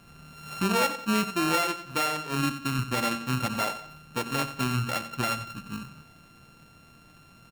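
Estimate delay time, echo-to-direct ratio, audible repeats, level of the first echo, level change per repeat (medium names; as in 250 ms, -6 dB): 90 ms, -12.5 dB, 3, -13.0 dB, -9.0 dB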